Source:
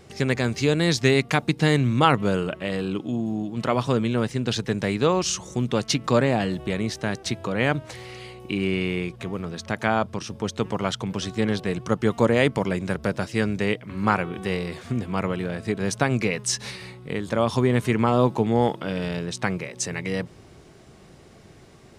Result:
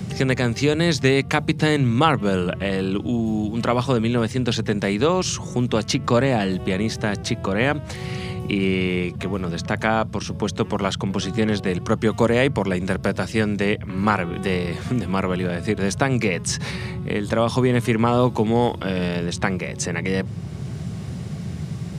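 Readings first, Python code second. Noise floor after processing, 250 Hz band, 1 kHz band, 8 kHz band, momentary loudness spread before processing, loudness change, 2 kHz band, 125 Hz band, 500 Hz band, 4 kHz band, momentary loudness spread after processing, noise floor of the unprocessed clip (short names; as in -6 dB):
-33 dBFS, +3.0 dB, +2.0 dB, +1.0 dB, 10 LU, +2.5 dB, +2.5 dB, +3.5 dB, +2.5 dB, +2.0 dB, 8 LU, -49 dBFS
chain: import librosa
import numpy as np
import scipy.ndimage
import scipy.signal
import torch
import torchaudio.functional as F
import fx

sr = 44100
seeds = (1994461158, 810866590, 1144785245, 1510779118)

y = fx.hum_notches(x, sr, base_hz=50, count=3)
y = fx.dmg_noise_band(y, sr, seeds[0], low_hz=73.0, high_hz=190.0, level_db=-37.0)
y = fx.band_squash(y, sr, depth_pct=40)
y = y * 10.0 ** (2.5 / 20.0)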